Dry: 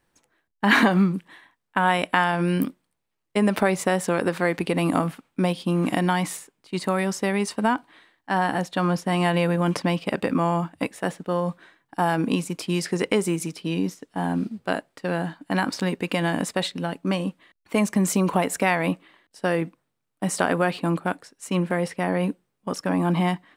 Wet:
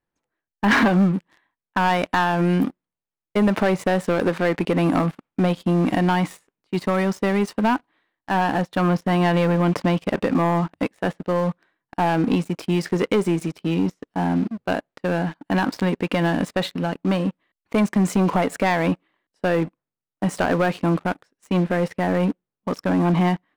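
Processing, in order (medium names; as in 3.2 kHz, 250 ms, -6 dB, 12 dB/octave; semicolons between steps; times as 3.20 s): low-pass 2.3 kHz 6 dB/octave; waveshaping leveller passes 3; trim -6.5 dB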